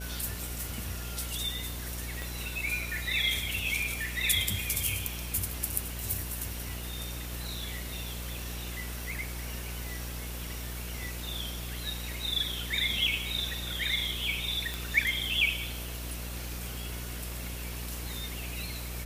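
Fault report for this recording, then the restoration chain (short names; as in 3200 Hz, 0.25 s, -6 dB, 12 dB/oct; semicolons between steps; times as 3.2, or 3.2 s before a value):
buzz 60 Hz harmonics 11 -39 dBFS
2.22 pop
14.74 pop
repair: de-click; de-hum 60 Hz, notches 11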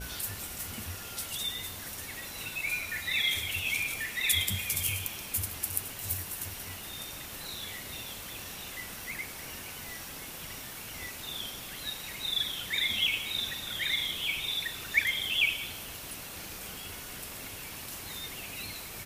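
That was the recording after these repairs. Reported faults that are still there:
none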